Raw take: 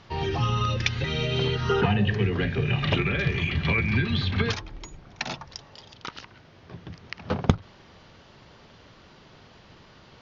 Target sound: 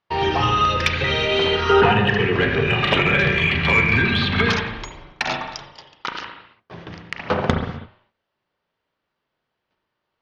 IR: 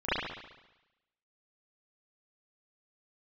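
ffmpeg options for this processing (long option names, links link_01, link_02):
-filter_complex "[0:a]agate=range=-36dB:threshold=-45dB:ratio=16:detection=peak,asplit=2[link_01][link_02];[link_02]highpass=frequency=720:poles=1,volume=17dB,asoftclip=type=tanh:threshold=-2.5dB[link_03];[link_01][link_03]amix=inputs=2:normalize=0,lowpass=frequency=2500:poles=1,volume=-6dB,asplit=2[link_04][link_05];[1:a]atrim=start_sample=2205,afade=type=out:start_time=0.4:duration=0.01,atrim=end_sample=18081,lowshelf=frequency=170:gain=8.5[link_06];[link_05][link_06]afir=irnorm=-1:irlink=0,volume=-15.5dB[link_07];[link_04][link_07]amix=inputs=2:normalize=0"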